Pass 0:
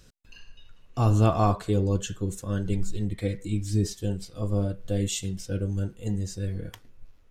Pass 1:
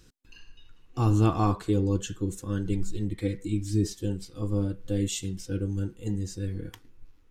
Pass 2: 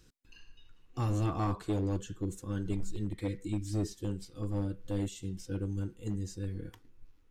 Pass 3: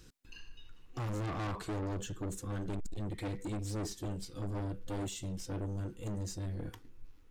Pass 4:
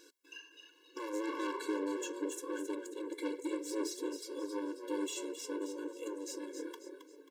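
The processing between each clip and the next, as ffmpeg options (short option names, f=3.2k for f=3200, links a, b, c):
-af "superequalizer=6b=2:8b=0.398,volume=-2dB"
-filter_complex "[0:a]acrossover=split=1300[a][b];[a]asoftclip=type=hard:threshold=-21.5dB[c];[b]alimiter=level_in=8dB:limit=-24dB:level=0:latency=1:release=261,volume=-8dB[d];[c][d]amix=inputs=2:normalize=0,volume=-5dB"
-af "asoftclip=type=tanh:threshold=-39.5dB,volume=5dB"
-filter_complex "[0:a]asplit=5[a][b][c][d][e];[b]adelay=269,afreqshift=60,volume=-8.5dB[f];[c]adelay=538,afreqshift=120,volume=-16.7dB[g];[d]adelay=807,afreqshift=180,volume=-24.9dB[h];[e]adelay=1076,afreqshift=240,volume=-33dB[i];[a][f][g][h][i]amix=inputs=5:normalize=0,afftfilt=real='re*eq(mod(floor(b*sr/1024/290),2),1)':imag='im*eq(mod(floor(b*sr/1024/290),2),1)':win_size=1024:overlap=0.75,volume=4.5dB"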